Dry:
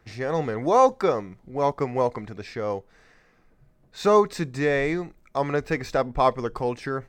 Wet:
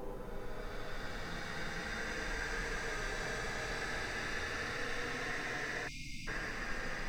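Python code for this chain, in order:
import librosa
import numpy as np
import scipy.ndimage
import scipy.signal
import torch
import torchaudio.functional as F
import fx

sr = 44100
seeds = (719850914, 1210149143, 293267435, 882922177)

y = fx.paulstretch(x, sr, seeds[0], factor=21.0, window_s=0.1, from_s=2.85)
y = fx.spec_erase(y, sr, start_s=5.88, length_s=0.4, low_hz=320.0, high_hz=2100.0)
y = y * 10.0 ** (17.0 / 20.0)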